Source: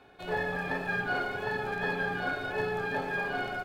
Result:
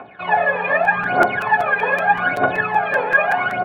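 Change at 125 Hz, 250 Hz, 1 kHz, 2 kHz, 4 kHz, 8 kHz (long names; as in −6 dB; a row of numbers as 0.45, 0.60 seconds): +5.5 dB, +8.0 dB, +17.0 dB, +14.0 dB, +6.5 dB, can't be measured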